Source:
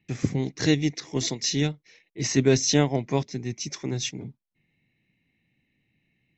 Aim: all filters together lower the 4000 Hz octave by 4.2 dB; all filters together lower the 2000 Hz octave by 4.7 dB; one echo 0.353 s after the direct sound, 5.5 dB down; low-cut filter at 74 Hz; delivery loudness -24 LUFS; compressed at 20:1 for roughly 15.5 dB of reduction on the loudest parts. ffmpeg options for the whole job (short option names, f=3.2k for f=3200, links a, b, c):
-af "highpass=74,equalizer=f=2k:t=o:g=-4.5,equalizer=f=4k:t=o:g=-4.5,acompressor=threshold=-30dB:ratio=20,aecho=1:1:353:0.531,volume=11.5dB"